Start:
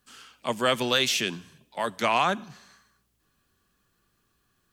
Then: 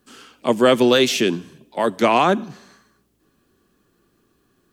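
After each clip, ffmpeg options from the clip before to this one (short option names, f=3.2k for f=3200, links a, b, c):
-af "equalizer=f=330:w=0.73:g=13,volume=3dB"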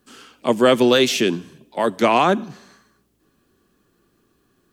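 -af anull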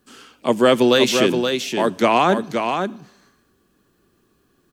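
-af "aecho=1:1:523:0.501"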